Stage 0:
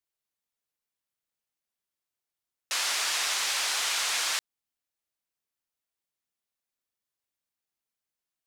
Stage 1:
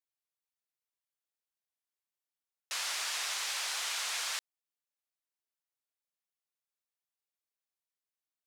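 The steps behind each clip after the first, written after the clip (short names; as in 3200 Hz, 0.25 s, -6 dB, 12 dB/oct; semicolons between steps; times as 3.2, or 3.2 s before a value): HPF 410 Hz 12 dB/oct; gain -7 dB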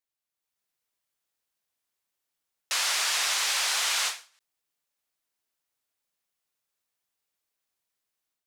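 AGC gain up to 7 dB; in parallel at -11 dB: overloaded stage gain 25.5 dB; on the sum: ending taper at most 170 dB/s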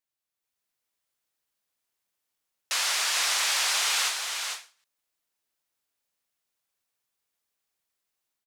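echo 0.45 s -5.5 dB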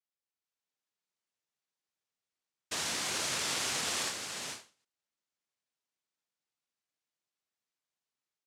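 noise vocoder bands 1; gain -7.5 dB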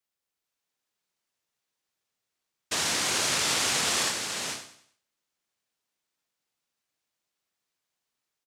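feedback echo 96 ms, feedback 37%, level -11.5 dB; gain +7 dB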